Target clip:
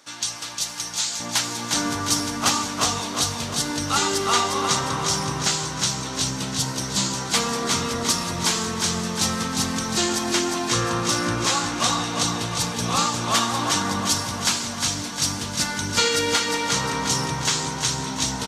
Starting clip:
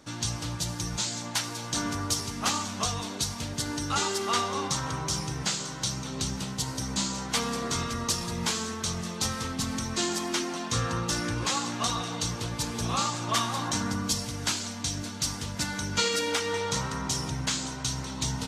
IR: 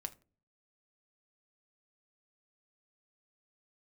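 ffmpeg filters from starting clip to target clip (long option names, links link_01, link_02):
-af "asetnsamples=nb_out_samples=441:pad=0,asendcmd='1.2 highpass f 150',highpass=frequency=1300:poles=1,aecho=1:1:355|710|1065|1420|1775|2130|2485:0.562|0.298|0.158|0.0837|0.0444|0.0235|0.0125,volume=6dB"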